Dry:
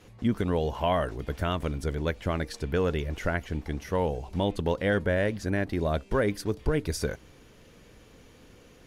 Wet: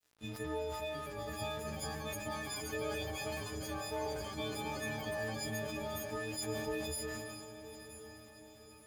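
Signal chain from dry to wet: frequency quantiser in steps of 6 st; HPF 54 Hz 24 dB/oct; compressor, threshold -27 dBFS, peak gain reduction 9.5 dB; chorus 0.28 Hz, delay 15.5 ms, depth 2 ms; crossover distortion -48 dBFS; echoes that change speed 0.771 s, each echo +5 st, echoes 3, each echo -6 dB; diffused feedback echo 1.006 s, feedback 50%, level -11 dB; sustainer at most 25 dB/s; gain -6 dB

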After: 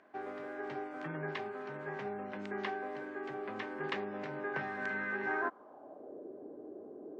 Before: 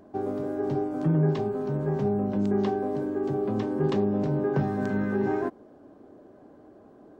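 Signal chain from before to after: band-pass sweep 2000 Hz -> 410 Hz, 5.23–6.25; gain +7.5 dB

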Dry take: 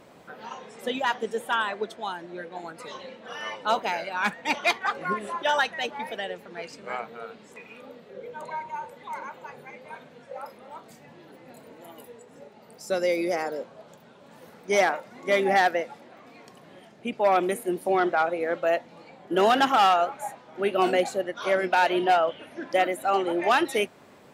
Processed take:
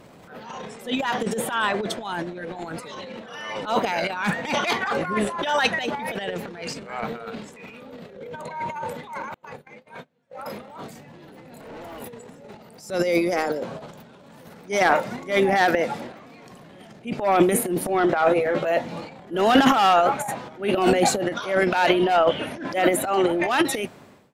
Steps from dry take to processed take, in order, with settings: ending faded out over 1.07 s; 9.34–10.39 gate -42 dBFS, range -37 dB; 11.61–12.01 overdrive pedal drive 28 dB, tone 1500 Hz, clips at -33.5 dBFS; transient shaper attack -9 dB, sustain +12 dB; tone controls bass +6 dB, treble +1 dB; 18.21–18.72 doubler 14 ms -3 dB; gain +2 dB

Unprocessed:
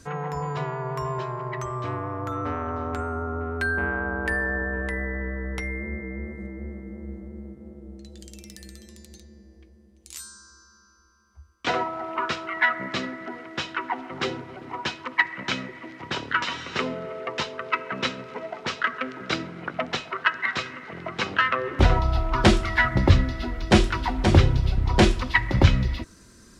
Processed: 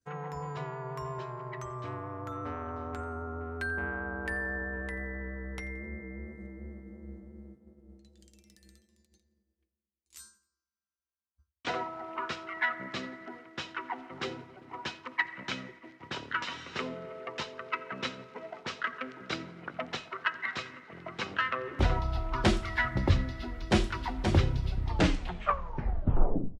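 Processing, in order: tape stop at the end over 1.80 s; expander -36 dBFS; feedback echo 87 ms, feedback 41%, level -22 dB; gain -8.5 dB

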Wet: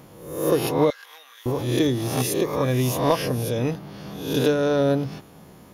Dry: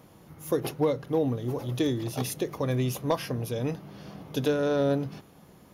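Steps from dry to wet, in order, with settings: spectral swells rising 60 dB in 0.69 s; 0.9–1.46 Chebyshev high-pass 1600 Hz, order 3; gain +4.5 dB

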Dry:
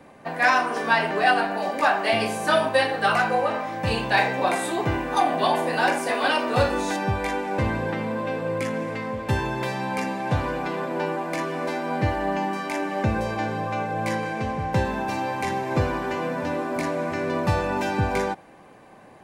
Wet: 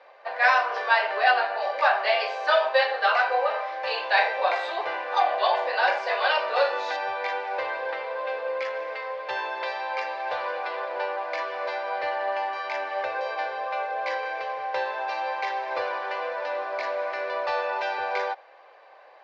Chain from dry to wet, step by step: elliptic band-pass 530–4700 Hz, stop band 40 dB

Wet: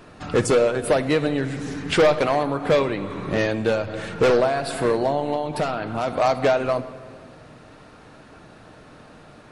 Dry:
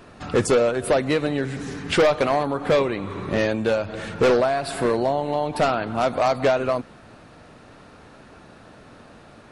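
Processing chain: 5.34–6.08 compressor, threshold -21 dBFS, peak gain reduction 6 dB; reverb RT60 1.9 s, pre-delay 6 ms, DRR 11.5 dB

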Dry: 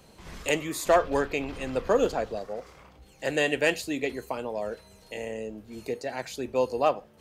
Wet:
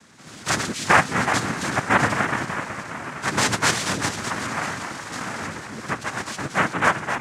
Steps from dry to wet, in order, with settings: regenerating reverse delay 0.189 s, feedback 64%, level -7 dB; diffused feedback echo 1.094 s, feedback 42%, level -14.5 dB; noise vocoder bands 3; bell 420 Hz -6.5 dB 0.95 oct; gain +5 dB

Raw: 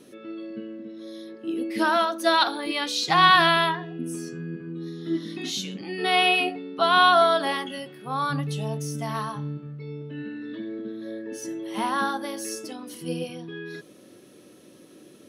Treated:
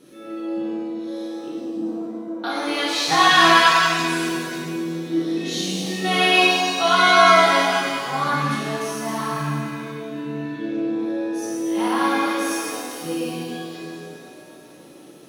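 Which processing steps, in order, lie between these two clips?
1.48–2.44 Butterworth band-pass 180 Hz, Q 1.2; shimmer reverb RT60 2.1 s, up +7 st, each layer -8 dB, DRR -6.5 dB; gain -2.5 dB

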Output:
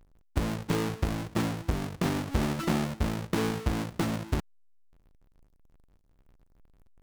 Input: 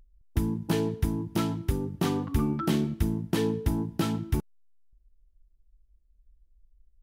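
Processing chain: half-waves squared off; Doppler distortion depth 0.7 ms; gain -6 dB

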